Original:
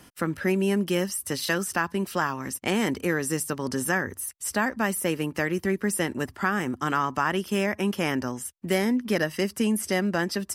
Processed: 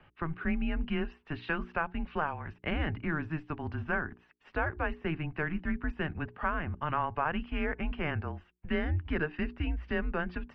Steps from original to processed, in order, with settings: mistuned SSB -160 Hz 170–3100 Hz; notches 60/120/180/240/300/360/420 Hz; gain -5.5 dB

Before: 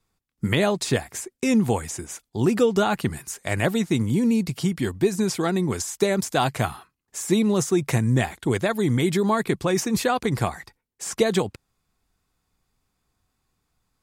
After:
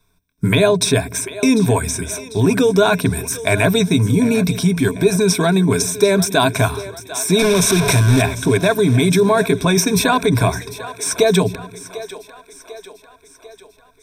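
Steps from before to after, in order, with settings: 7.39–8.22 delta modulation 64 kbps, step -19.5 dBFS; ripple EQ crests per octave 1.6, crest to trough 15 dB; in parallel at -2.5 dB: negative-ratio compressor -22 dBFS; on the sum: split-band echo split 340 Hz, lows 0.131 s, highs 0.746 s, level -15 dB; gain +1.5 dB

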